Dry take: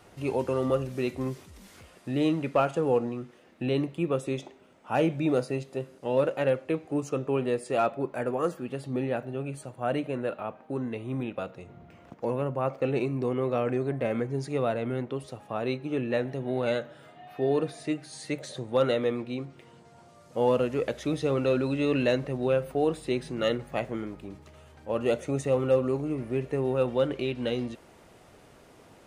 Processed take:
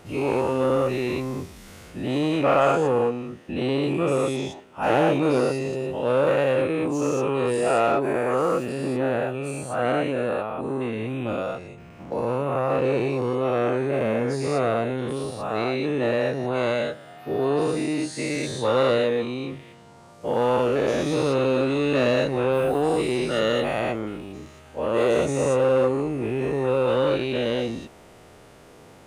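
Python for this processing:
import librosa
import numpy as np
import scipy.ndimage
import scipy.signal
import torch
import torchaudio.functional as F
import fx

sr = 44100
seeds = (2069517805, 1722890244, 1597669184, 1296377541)

y = fx.spec_dilate(x, sr, span_ms=240)
y = fx.transformer_sat(y, sr, knee_hz=760.0)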